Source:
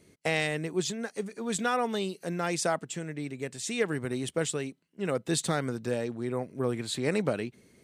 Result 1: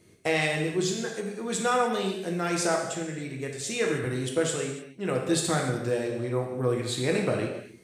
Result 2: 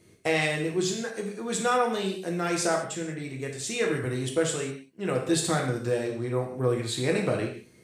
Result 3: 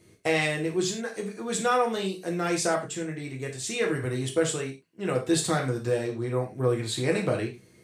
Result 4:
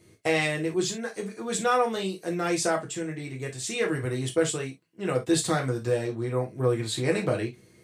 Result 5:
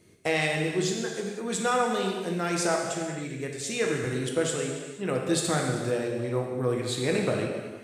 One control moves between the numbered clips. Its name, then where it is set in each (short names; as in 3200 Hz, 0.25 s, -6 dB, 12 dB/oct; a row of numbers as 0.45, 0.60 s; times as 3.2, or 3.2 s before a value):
non-linear reverb, gate: 330, 220, 130, 90, 530 ms